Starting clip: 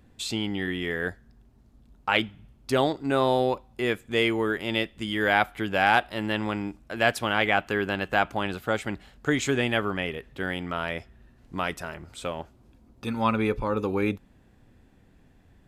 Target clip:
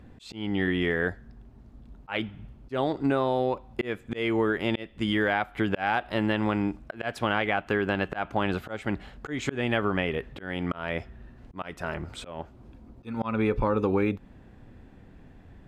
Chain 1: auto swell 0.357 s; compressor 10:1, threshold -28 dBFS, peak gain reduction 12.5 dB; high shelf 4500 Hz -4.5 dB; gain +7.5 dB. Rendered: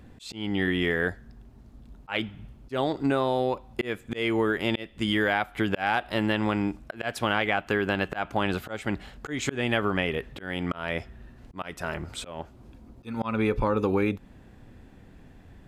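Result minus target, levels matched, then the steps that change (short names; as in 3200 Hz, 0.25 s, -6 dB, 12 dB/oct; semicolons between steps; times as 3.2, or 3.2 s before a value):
8000 Hz band +6.5 dB
change: high shelf 4500 Hz -14 dB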